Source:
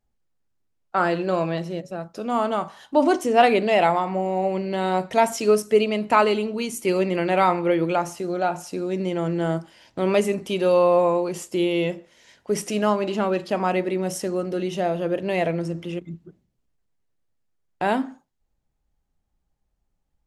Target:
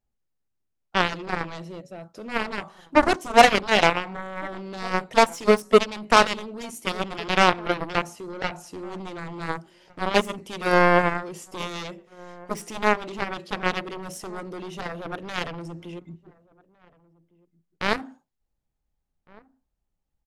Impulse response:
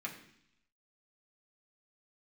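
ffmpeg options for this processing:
-filter_complex "[0:a]aeval=exprs='0.668*(cos(1*acos(clip(val(0)/0.668,-1,1)))-cos(1*PI/2))+0.133*(cos(7*acos(clip(val(0)/0.668,-1,1)))-cos(7*PI/2))':c=same,asplit=2[s0][s1];[s1]adelay=1458,volume=0.0631,highshelf=f=4000:g=-32.8[s2];[s0][s2]amix=inputs=2:normalize=0,volume=1.33"

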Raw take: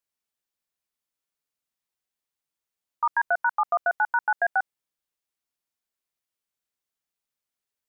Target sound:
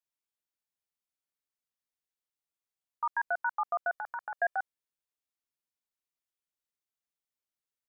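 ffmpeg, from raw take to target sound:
-filter_complex "[0:a]asplit=3[s0][s1][s2];[s0]afade=t=out:st=3.91:d=0.02[s3];[s1]aecho=1:1:1.7:0.72,afade=t=in:st=3.91:d=0.02,afade=t=out:st=4.57:d=0.02[s4];[s2]afade=t=in:st=4.57:d=0.02[s5];[s3][s4][s5]amix=inputs=3:normalize=0,volume=0.422"

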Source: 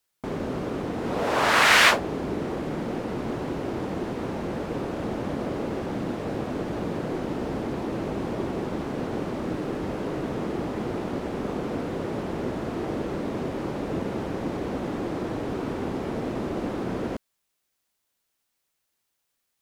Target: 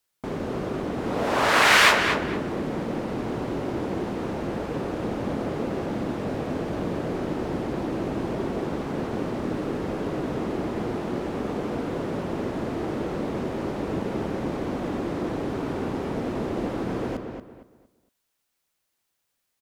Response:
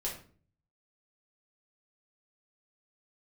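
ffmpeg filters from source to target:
-filter_complex "[0:a]asplit=2[s0][s1];[s1]adelay=231,lowpass=f=3200:p=1,volume=0.501,asplit=2[s2][s3];[s3]adelay=231,lowpass=f=3200:p=1,volume=0.29,asplit=2[s4][s5];[s5]adelay=231,lowpass=f=3200:p=1,volume=0.29,asplit=2[s6][s7];[s7]adelay=231,lowpass=f=3200:p=1,volume=0.29[s8];[s0][s2][s4][s6][s8]amix=inputs=5:normalize=0"

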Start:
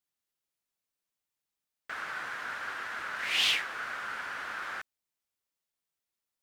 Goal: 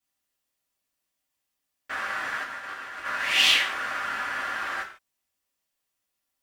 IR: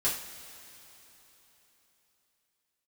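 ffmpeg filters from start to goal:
-filter_complex "[0:a]asettb=1/sr,asplit=3[s0][s1][s2];[s0]atrim=end=2.434[s3];[s1]atrim=start=2.43:end=3.05,asetpts=PTS-STARTPTS,afade=t=in:d=0.004:c=qsin,afade=t=out:st=0.616:d=0.004:c=qsin,agate=range=0.0224:threshold=0.0282:ratio=3:detection=peak[s4];[s2]atrim=start=3.046[s5];[s3][s4]acrossfade=d=0.004:c1=hsin:c2=qsin[s6];[s6][s5]acrossfade=d=0.004:c1=qsin:c2=hsin[s7];[1:a]atrim=start_sample=2205,afade=t=out:st=0.34:d=0.01,atrim=end_sample=15435,asetrate=74970,aresample=44100[s8];[s7][s8]afir=irnorm=-1:irlink=0,volume=1.68"

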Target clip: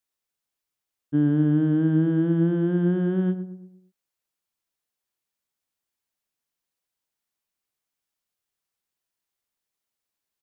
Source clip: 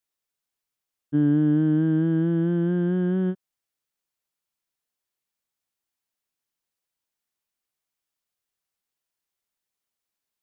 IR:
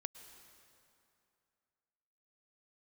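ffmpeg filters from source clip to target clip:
-filter_complex "[0:a]asplit=2[s0][s1];[s1]adelay=114,lowpass=f=970:p=1,volume=0.355,asplit=2[s2][s3];[s3]adelay=114,lowpass=f=970:p=1,volume=0.48,asplit=2[s4][s5];[s5]adelay=114,lowpass=f=970:p=1,volume=0.48,asplit=2[s6][s7];[s7]adelay=114,lowpass=f=970:p=1,volume=0.48,asplit=2[s8][s9];[s9]adelay=114,lowpass=f=970:p=1,volume=0.48[s10];[s0][s2][s4][s6][s8][s10]amix=inputs=6:normalize=0"

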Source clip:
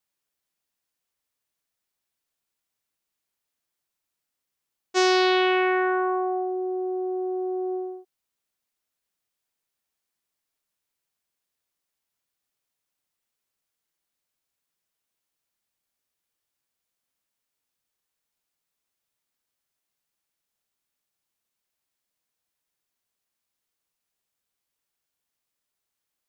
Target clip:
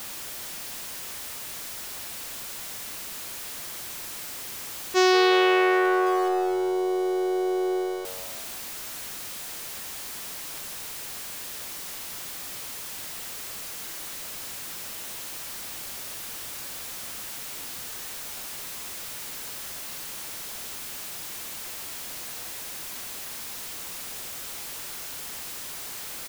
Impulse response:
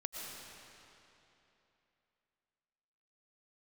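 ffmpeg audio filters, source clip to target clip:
-filter_complex "[0:a]aeval=exprs='val(0)+0.5*0.0299*sgn(val(0))':c=same,asplit=6[s0][s1][s2][s3][s4][s5];[s1]adelay=176,afreqshift=93,volume=0.211[s6];[s2]adelay=352,afreqshift=186,volume=0.106[s7];[s3]adelay=528,afreqshift=279,volume=0.0531[s8];[s4]adelay=704,afreqshift=372,volume=0.0263[s9];[s5]adelay=880,afreqshift=465,volume=0.0132[s10];[s0][s6][s7][s8][s9][s10]amix=inputs=6:normalize=0"

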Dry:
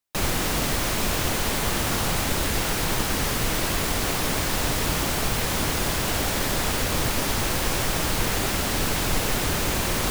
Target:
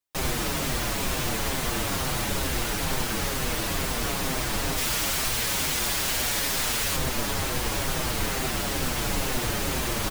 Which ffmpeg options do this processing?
-filter_complex "[0:a]asettb=1/sr,asplit=3[s0][s1][s2];[s0]atrim=end=4.774[s3];[s1]atrim=start=4.77:end=6.96,asetpts=PTS-STARTPTS,afade=t=in:d=0.004:c=qsin,afade=t=out:st=2.186:d=0.004:c=qsin,tiltshelf=f=1200:g=-5[s4];[s2]atrim=start=6.956[s5];[s3][s4]acrossfade=d=0.004:c1=hsin:c2=qsin[s6];[s6][s5]acrossfade=d=0.004:c1=qsin:c2=hsin,asplit=2[s7][s8];[s8]adelay=6.6,afreqshift=-2.2[s9];[s7][s9]amix=inputs=2:normalize=1"

